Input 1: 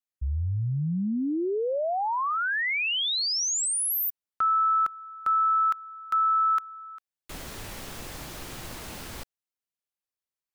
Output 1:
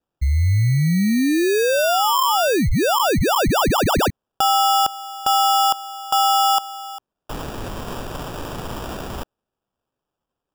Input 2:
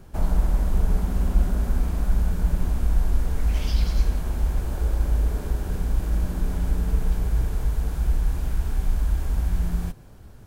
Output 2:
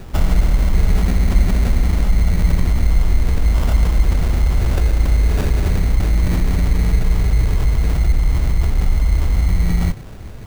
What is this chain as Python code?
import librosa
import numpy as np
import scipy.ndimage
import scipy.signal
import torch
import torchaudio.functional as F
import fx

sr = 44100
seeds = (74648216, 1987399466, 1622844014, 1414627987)

p1 = fx.dynamic_eq(x, sr, hz=100.0, q=1.2, threshold_db=-38.0, ratio=3.0, max_db=5)
p2 = fx.over_compress(p1, sr, threshold_db=-27.0, ratio=-1.0)
p3 = p1 + (p2 * 10.0 ** (-2.5 / 20.0))
p4 = fx.sample_hold(p3, sr, seeds[0], rate_hz=2100.0, jitter_pct=0)
y = p4 * 10.0 ** (4.0 / 20.0)